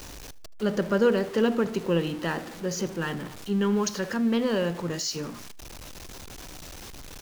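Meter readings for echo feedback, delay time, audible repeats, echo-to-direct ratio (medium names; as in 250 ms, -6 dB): 33%, 77 ms, 2, -21.5 dB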